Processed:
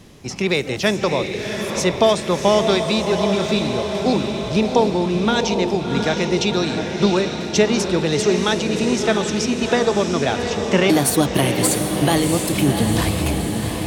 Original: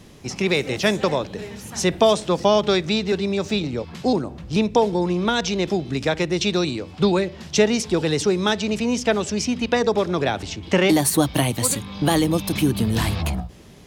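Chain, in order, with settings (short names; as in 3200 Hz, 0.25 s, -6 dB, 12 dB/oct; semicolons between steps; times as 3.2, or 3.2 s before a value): diffused feedback echo 0.71 s, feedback 63%, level -5.5 dB; gain +1 dB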